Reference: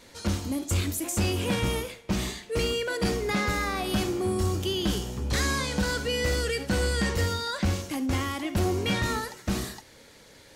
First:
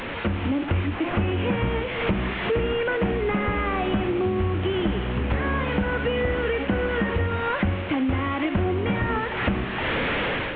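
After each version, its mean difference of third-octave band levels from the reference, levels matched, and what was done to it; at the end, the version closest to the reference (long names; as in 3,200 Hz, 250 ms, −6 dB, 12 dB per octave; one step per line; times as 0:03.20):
12.5 dB: linear delta modulator 16 kbit/s, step −34 dBFS
automatic gain control gain up to 10.5 dB
hum removal 69.65 Hz, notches 2
downward compressor 6 to 1, threshold −31 dBFS, peak gain reduction 18 dB
level +8.5 dB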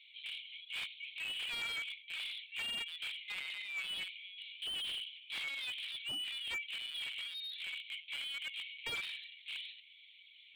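18.5 dB: Chebyshev high-pass with heavy ripple 2,200 Hz, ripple 6 dB
high-frequency loss of the air 110 metres
linear-prediction vocoder at 8 kHz pitch kept
slew-rate limiting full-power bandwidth 17 Hz
level +6.5 dB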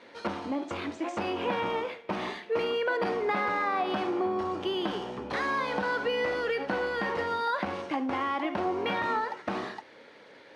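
9.0 dB: dynamic equaliser 900 Hz, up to +8 dB, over −47 dBFS, Q 1.3
downward compressor, threshold −27 dBFS, peak gain reduction 6.5 dB
bad sample-rate conversion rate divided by 3×, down filtered, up hold
band-pass filter 300–2,600 Hz
level +3.5 dB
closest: third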